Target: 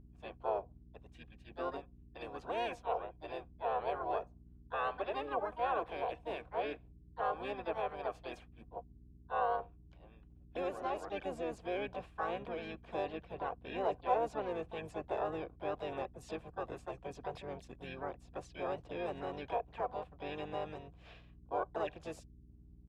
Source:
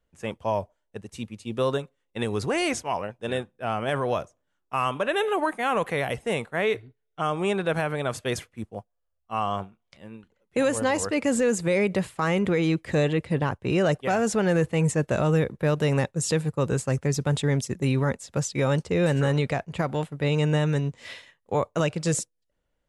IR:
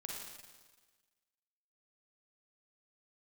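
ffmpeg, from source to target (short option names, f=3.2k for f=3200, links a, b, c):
-filter_complex "[0:a]asplit=3[a][b][c];[a]bandpass=f=730:t=q:w=8,volume=0dB[d];[b]bandpass=f=1.09k:t=q:w=8,volume=-6dB[e];[c]bandpass=f=2.44k:t=q:w=8,volume=-9dB[f];[d][e][f]amix=inputs=3:normalize=0,aeval=exprs='val(0)+0.00178*(sin(2*PI*60*n/s)+sin(2*PI*2*60*n/s)/2+sin(2*PI*3*60*n/s)/3+sin(2*PI*4*60*n/s)/4+sin(2*PI*5*60*n/s)/5)':c=same,asplit=4[g][h][i][j];[h]asetrate=29433,aresample=44100,atempo=1.49831,volume=-5dB[k];[i]asetrate=33038,aresample=44100,atempo=1.33484,volume=-13dB[l];[j]asetrate=58866,aresample=44100,atempo=0.749154,volume=-7dB[m];[g][k][l][m]amix=inputs=4:normalize=0,volume=-3.5dB"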